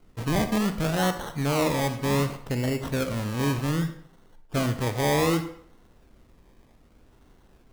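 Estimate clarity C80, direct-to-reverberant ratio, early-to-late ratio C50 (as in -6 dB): 13.0 dB, 8.5 dB, 10.0 dB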